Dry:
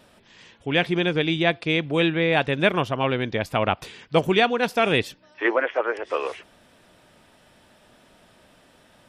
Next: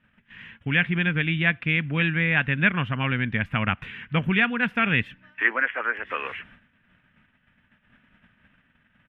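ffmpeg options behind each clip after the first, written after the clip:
ffmpeg -i in.wav -filter_complex "[0:a]agate=range=-17dB:threshold=-53dB:ratio=16:detection=peak,firequalizer=gain_entry='entry(230,0);entry(340,-15);entry(660,-16);entry(1600,3);entry(2900,-3);entry(4500,-29)':delay=0.05:min_phase=1,asplit=2[link_01][link_02];[link_02]acompressor=threshold=-34dB:ratio=6,volume=2.5dB[link_03];[link_01][link_03]amix=inputs=2:normalize=0" out.wav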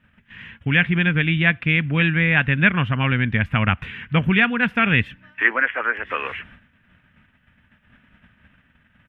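ffmpeg -i in.wav -af "equalizer=frequency=70:width_type=o:width=1.3:gain=7,volume=4dB" out.wav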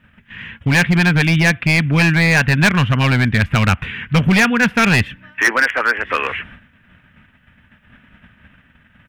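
ffmpeg -i in.wav -af "asoftclip=type=hard:threshold=-15.5dB,volume=7dB" out.wav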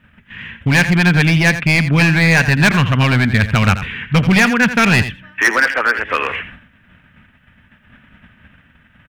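ffmpeg -i in.wav -af "aecho=1:1:85:0.251,volume=1dB" out.wav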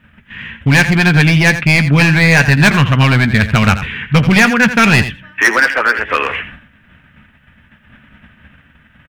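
ffmpeg -i in.wav -filter_complex "[0:a]asplit=2[link_01][link_02];[link_02]adelay=14,volume=-12.5dB[link_03];[link_01][link_03]amix=inputs=2:normalize=0,volume=2.5dB" out.wav

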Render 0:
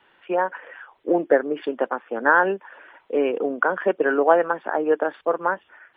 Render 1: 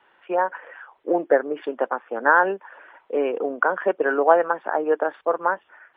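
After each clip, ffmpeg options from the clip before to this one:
ffmpeg -i in.wav -af "equalizer=frequency=900:width=0.39:gain=9.5,volume=-8dB" out.wav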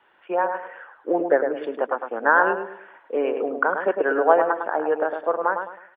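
ffmpeg -i in.wav -filter_complex "[0:a]asplit=2[link_01][link_02];[link_02]adelay=105,lowpass=frequency=1900:poles=1,volume=-5.5dB,asplit=2[link_03][link_04];[link_04]adelay=105,lowpass=frequency=1900:poles=1,volume=0.34,asplit=2[link_05][link_06];[link_06]adelay=105,lowpass=frequency=1900:poles=1,volume=0.34,asplit=2[link_07][link_08];[link_08]adelay=105,lowpass=frequency=1900:poles=1,volume=0.34[link_09];[link_01][link_03][link_05][link_07][link_09]amix=inputs=5:normalize=0,volume=-1dB" out.wav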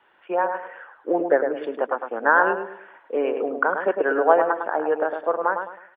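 ffmpeg -i in.wav -af anull out.wav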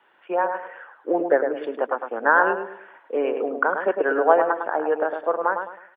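ffmpeg -i in.wav -af "highpass=150" out.wav

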